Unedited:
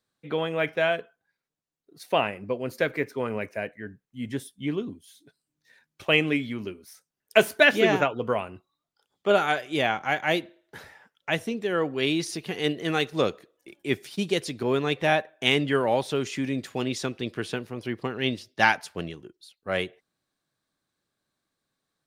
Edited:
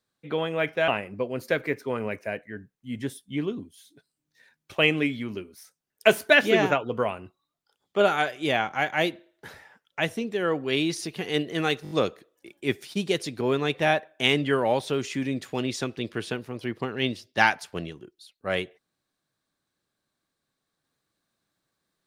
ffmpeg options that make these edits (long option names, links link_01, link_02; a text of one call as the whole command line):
ffmpeg -i in.wav -filter_complex "[0:a]asplit=6[link_01][link_02][link_03][link_04][link_05][link_06];[link_01]atrim=end=0.882[link_07];[link_02]atrim=start=2.178:end=13.152[link_08];[link_03]atrim=start=13.128:end=13.152[link_09];[link_04]atrim=start=13.128:end=13.152[link_10];[link_05]atrim=start=13.128:end=13.152[link_11];[link_06]atrim=start=13.128[link_12];[link_07][link_08]acrossfade=duration=0.004:curve1=hsin:curve2=hsin[link_13];[link_13][link_09]acrossfade=duration=0.004:curve1=hsin:curve2=hsin[link_14];[link_14][link_10]acrossfade=duration=0.004:curve1=hsin:curve2=hsin[link_15];[link_15][link_11]acrossfade=duration=0.004:curve1=hsin:curve2=hsin[link_16];[link_16][link_12]acrossfade=duration=0.004:curve1=hsin:curve2=hsin" out.wav